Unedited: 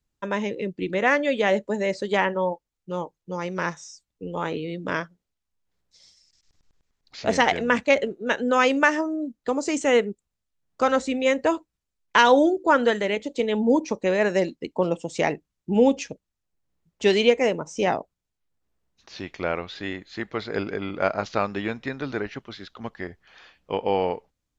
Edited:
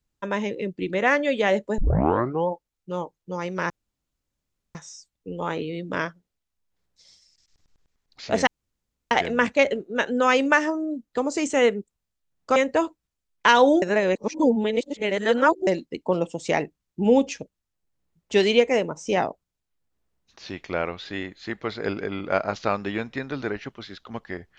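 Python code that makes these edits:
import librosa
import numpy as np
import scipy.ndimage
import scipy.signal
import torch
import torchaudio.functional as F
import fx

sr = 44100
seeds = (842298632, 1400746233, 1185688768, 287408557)

y = fx.edit(x, sr, fx.tape_start(start_s=1.78, length_s=0.7),
    fx.insert_room_tone(at_s=3.7, length_s=1.05),
    fx.insert_room_tone(at_s=7.42, length_s=0.64),
    fx.cut(start_s=10.87, length_s=0.39),
    fx.reverse_span(start_s=12.52, length_s=1.85), tone=tone)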